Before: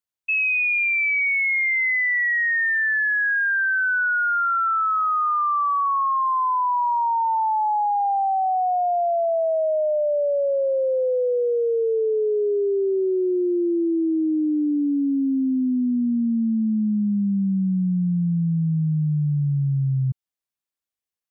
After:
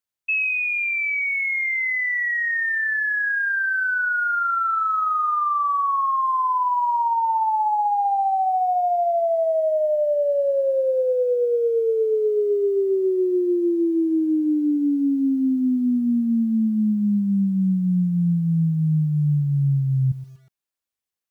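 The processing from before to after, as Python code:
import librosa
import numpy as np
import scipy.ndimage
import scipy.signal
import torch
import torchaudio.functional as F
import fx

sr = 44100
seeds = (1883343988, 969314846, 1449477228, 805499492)

y = fx.rider(x, sr, range_db=10, speed_s=0.5)
y = fx.echo_crushed(y, sr, ms=121, feedback_pct=35, bits=8, wet_db=-15.0)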